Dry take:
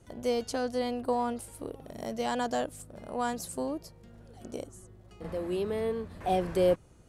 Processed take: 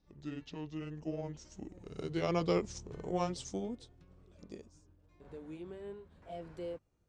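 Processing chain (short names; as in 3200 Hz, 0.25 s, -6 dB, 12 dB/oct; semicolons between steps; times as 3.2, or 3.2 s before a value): gliding pitch shift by -9.5 st ending unshifted; Doppler pass-by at 2.73, 6 m/s, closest 3 m; LPF 6500 Hz 12 dB/oct; gain +2 dB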